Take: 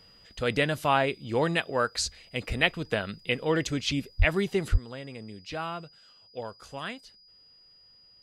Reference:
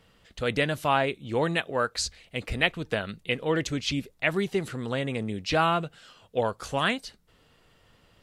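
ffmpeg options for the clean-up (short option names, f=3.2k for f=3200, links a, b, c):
-filter_complex "[0:a]bandreject=f=4.9k:w=30,asplit=3[a][b][c];[a]afade=t=out:st=4.18:d=0.02[d];[b]highpass=f=140:w=0.5412,highpass=f=140:w=1.3066,afade=t=in:st=4.18:d=0.02,afade=t=out:st=4.3:d=0.02[e];[c]afade=t=in:st=4.3:d=0.02[f];[d][e][f]amix=inputs=3:normalize=0,asplit=3[g][h][i];[g]afade=t=out:st=4.71:d=0.02[j];[h]highpass=f=140:w=0.5412,highpass=f=140:w=1.3066,afade=t=in:st=4.71:d=0.02,afade=t=out:st=4.83:d=0.02[k];[i]afade=t=in:st=4.83:d=0.02[l];[j][k][l]amix=inputs=3:normalize=0,asetnsamples=n=441:p=0,asendcmd='4.74 volume volume 11dB',volume=0dB"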